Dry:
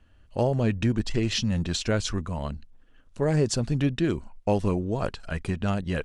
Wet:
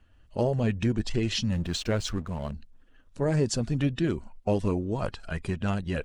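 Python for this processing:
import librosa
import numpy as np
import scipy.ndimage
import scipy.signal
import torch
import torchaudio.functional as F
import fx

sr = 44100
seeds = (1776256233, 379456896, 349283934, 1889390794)

y = fx.spec_quant(x, sr, step_db=15)
y = fx.backlash(y, sr, play_db=-40.5, at=(1.53, 2.53))
y = F.gain(torch.from_numpy(y), -1.5).numpy()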